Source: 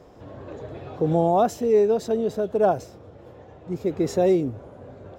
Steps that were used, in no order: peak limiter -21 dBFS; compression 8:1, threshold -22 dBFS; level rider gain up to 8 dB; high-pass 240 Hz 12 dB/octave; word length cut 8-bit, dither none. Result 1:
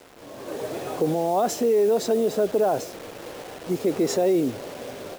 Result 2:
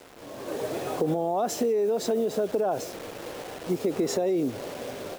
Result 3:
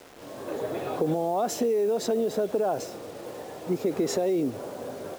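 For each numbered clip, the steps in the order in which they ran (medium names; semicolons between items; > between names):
peak limiter > compression > high-pass > word length cut > level rider; high-pass > word length cut > peak limiter > level rider > compression; high-pass > peak limiter > level rider > compression > word length cut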